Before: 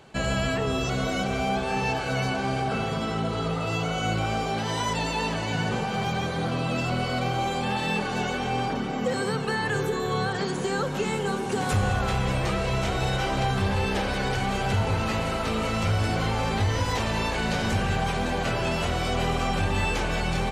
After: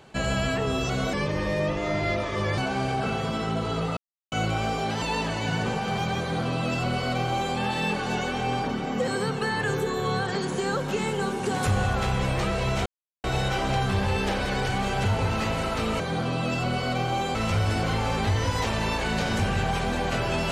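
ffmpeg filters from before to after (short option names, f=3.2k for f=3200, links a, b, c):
-filter_complex "[0:a]asplit=9[a][b][c][d][e][f][g][h][i];[a]atrim=end=1.134[j];[b]atrim=start=1.13:end=2.26,asetpts=PTS-STARTPTS,asetrate=34398,aresample=44100,atrim=end_sample=63888,asetpts=PTS-STARTPTS[k];[c]atrim=start=2.256:end=3.65,asetpts=PTS-STARTPTS,afade=t=out:st=1.39:d=0.004:c=hsin[l];[d]atrim=start=3.65:end=4,asetpts=PTS-STARTPTS,volume=0[m];[e]atrim=start=4:end=4.702,asetpts=PTS-STARTPTS,afade=t=in:d=0.004:c=hsin[n];[f]atrim=start=5.078:end=12.92,asetpts=PTS-STARTPTS,afade=t=out:st=7.838:d=0.004:c=hsin,apad=pad_dur=0.38[o];[g]atrim=start=12.92:end=15.682,asetpts=PTS-STARTPTS,afade=t=in:d=0.004:c=hsin[p];[h]atrim=start=6.258:end=7.612[q];[i]atrim=start=15.678[r];[j][k]acrossfade=d=0.004:c1=hsin:c2=hsin[s];[l][m][n]concat=n=3:v=0:a=1[t];[s][t]acrossfade=d=0.004:c1=hsin:c2=hsin[u];[o][p]concat=n=2:v=0:a=1[v];[u][v]acrossfade=d=0.004:c1=hsin:c2=hsin[w];[w][q]acrossfade=d=0.004:c1=hsin:c2=hsin[x];[x][r]acrossfade=d=0.004:c1=hsin:c2=hsin"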